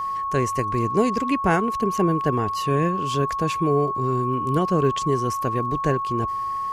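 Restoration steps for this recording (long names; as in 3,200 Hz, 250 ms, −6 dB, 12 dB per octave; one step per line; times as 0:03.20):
click removal
notch filter 1,100 Hz, Q 30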